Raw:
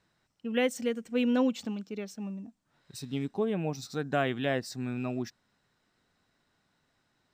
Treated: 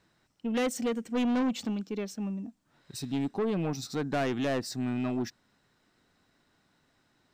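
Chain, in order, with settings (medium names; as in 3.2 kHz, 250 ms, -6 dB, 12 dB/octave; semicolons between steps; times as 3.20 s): peaking EQ 300 Hz +3.5 dB 0.73 oct; saturation -28 dBFS, distortion -9 dB; trim +3.5 dB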